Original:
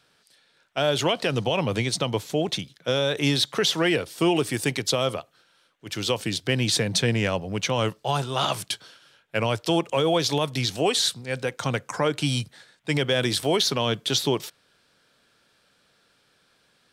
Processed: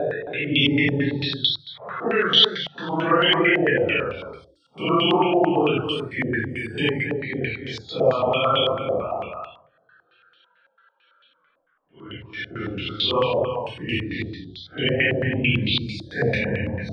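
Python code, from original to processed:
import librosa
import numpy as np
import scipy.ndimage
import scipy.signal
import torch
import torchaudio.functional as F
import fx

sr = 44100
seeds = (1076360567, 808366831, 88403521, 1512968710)

y = fx.spec_topn(x, sr, count=64)
y = fx.paulstretch(y, sr, seeds[0], factor=4.4, window_s=0.05, from_s=3.11)
y = y + 10.0 ** (-6.0 / 20.0) * np.pad(y, (int(269 * sr / 1000.0), 0))[:len(y)]
y = fx.filter_held_lowpass(y, sr, hz=9.0, low_hz=660.0, high_hz=3200.0)
y = F.gain(torch.from_numpy(y), -1.0).numpy()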